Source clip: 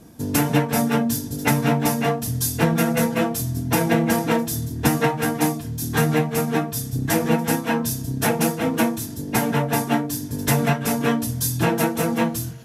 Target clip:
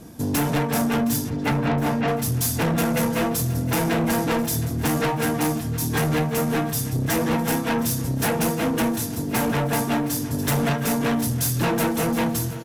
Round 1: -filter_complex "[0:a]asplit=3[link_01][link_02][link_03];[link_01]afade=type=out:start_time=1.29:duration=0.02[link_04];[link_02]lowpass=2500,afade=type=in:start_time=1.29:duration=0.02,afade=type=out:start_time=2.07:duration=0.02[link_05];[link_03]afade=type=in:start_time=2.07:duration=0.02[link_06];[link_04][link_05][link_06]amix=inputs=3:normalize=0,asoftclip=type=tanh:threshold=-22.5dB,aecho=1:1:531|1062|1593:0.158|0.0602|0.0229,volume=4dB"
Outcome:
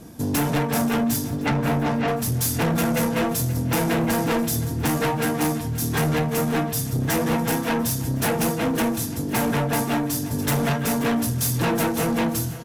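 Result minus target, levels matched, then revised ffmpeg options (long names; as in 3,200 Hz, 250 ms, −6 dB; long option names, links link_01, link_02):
echo 186 ms early
-filter_complex "[0:a]asplit=3[link_01][link_02][link_03];[link_01]afade=type=out:start_time=1.29:duration=0.02[link_04];[link_02]lowpass=2500,afade=type=in:start_time=1.29:duration=0.02,afade=type=out:start_time=2.07:duration=0.02[link_05];[link_03]afade=type=in:start_time=2.07:duration=0.02[link_06];[link_04][link_05][link_06]amix=inputs=3:normalize=0,asoftclip=type=tanh:threshold=-22.5dB,aecho=1:1:717|1434|2151:0.158|0.0602|0.0229,volume=4dB"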